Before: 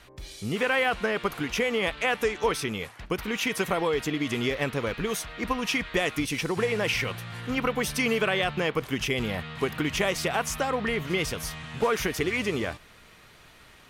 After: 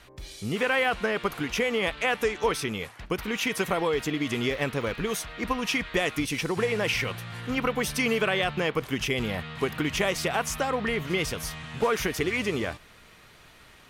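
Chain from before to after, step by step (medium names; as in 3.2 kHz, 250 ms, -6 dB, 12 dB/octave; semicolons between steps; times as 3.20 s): 3.56–5.05 s: crackle 65 per s -41 dBFS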